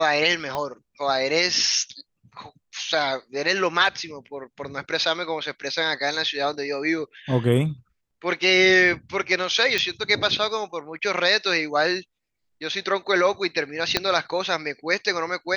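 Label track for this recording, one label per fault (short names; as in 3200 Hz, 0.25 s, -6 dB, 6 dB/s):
0.550000	0.550000	pop -14 dBFS
9.780000	9.780000	pop -9 dBFS
13.970000	13.970000	pop -4 dBFS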